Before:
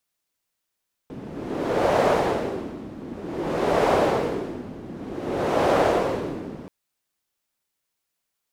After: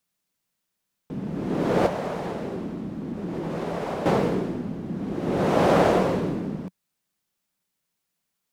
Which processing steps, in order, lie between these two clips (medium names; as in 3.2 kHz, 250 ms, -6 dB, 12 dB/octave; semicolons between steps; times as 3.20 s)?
peaking EQ 180 Hz +10.5 dB 0.78 oct; 1.86–4.06 s: compression 6:1, threshold -27 dBFS, peak gain reduction 12 dB